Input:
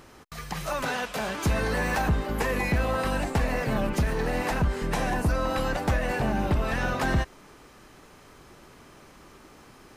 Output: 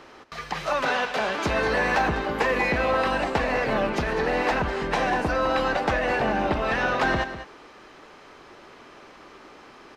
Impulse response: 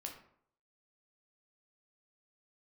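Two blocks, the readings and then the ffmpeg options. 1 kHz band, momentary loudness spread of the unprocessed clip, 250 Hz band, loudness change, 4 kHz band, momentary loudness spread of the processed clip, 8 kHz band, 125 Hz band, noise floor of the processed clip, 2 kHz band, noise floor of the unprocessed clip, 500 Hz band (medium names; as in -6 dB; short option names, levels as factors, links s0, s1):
+5.5 dB, 4 LU, 0.0 dB, +3.0 dB, +4.0 dB, 5 LU, -4.0 dB, -6.0 dB, -49 dBFS, +5.5 dB, -52 dBFS, +5.0 dB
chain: -filter_complex "[0:a]acrossover=split=270 5400:gain=0.224 1 0.1[s0][s1][s2];[s0][s1][s2]amix=inputs=3:normalize=0,aecho=1:1:200:0.251,volume=1.88"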